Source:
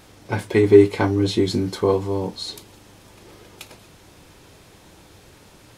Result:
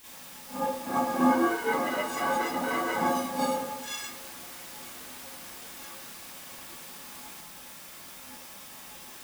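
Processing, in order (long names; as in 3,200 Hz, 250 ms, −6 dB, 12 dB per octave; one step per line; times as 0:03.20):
spectral peaks only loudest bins 2
downward compressor 6 to 1, threshold −27 dBFS, peak gain reduction 17.5 dB
mains-hum notches 60/120/180/240/300/360/420/480/540 Hz
time stretch by phase vocoder 1.6×
cochlear-implant simulation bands 2
stiff-string resonator 250 Hz, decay 0.26 s, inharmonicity 0.03
bit-depth reduction 10 bits, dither triangular
convolution reverb RT60 0.50 s, pre-delay 33 ms, DRR −11 dB
delay with pitch and tempo change per echo 488 ms, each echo +5 semitones, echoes 3
level +5.5 dB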